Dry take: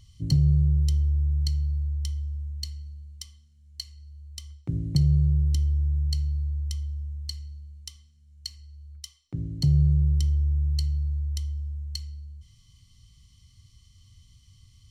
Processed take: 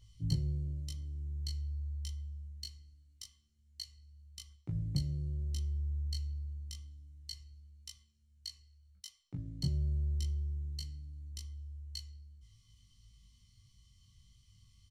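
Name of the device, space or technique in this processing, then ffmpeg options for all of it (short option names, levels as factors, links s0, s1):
double-tracked vocal: -filter_complex "[0:a]asplit=2[s0][s1];[s1]adelay=17,volume=0.668[s2];[s0][s2]amix=inputs=2:normalize=0,flanger=delay=19:depth=3.5:speed=0.25,volume=0.501"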